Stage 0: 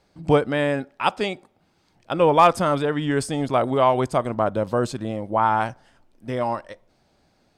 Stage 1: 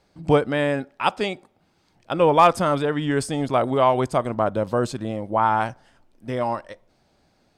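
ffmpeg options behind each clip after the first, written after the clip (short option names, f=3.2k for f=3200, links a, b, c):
-af anull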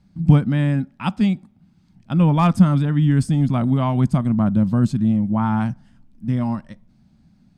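-af "lowshelf=f=300:t=q:w=3:g=13.5,volume=-5dB"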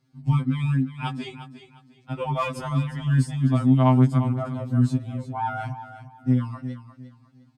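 -filter_complex "[0:a]highpass=130,asplit=2[a][b];[b]aecho=0:1:353|706|1059:0.251|0.0678|0.0183[c];[a][c]amix=inputs=2:normalize=0,afftfilt=real='re*2.45*eq(mod(b,6),0)':imag='im*2.45*eq(mod(b,6),0)':win_size=2048:overlap=0.75,volume=-1.5dB"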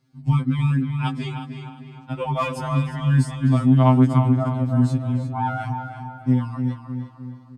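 -filter_complex "[0:a]asplit=2[a][b];[b]adelay=305,lowpass=f=3k:p=1,volume=-8dB,asplit=2[c][d];[d]adelay=305,lowpass=f=3k:p=1,volume=0.52,asplit=2[e][f];[f]adelay=305,lowpass=f=3k:p=1,volume=0.52,asplit=2[g][h];[h]adelay=305,lowpass=f=3k:p=1,volume=0.52,asplit=2[i][j];[j]adelay=305,lowpass=f=3k:p=1,volume=0.52,asplit=2[k][l];[l]adelay=305,lowpass=f=3k:p=1,volume=0.52[m];[a][c][e][g][i][k][m]amix=inputs=7:normalize=0,volume=2dB"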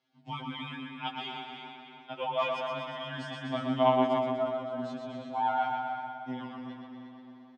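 -af "highpass=450,equalizer=f=460:t=q:w=4:g=-4,equalizer=f=700:t=q:w=4:g=7,equalizer=f=1.2k:t=q:w=4:g=-3,equalizer=f=3.2k:t=q:w=4:g=8,equalizer=f=4.6k:t=q:w=4:g=-5,lowpass=f=5.5k:w=0.5412,lowpass=f=5.5k:w=1.3066,aecho=1:1:123|246|369|492|615|738|861|984:0.596|0.351|0.207|0.122|0.0722|0.0426|0.0251|0.0148,tremolo=f=0.52:d=0.29,volume=-5dB"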